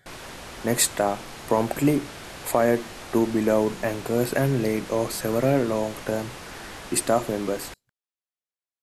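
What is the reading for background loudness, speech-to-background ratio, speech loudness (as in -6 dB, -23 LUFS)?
-39.0 LUFS, 14.5 dB, -24.5 LUFS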